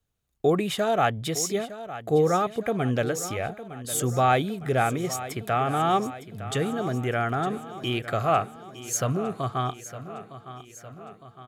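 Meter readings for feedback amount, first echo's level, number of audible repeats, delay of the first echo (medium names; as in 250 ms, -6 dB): 58%, -14.0 dB, 5, 909 ms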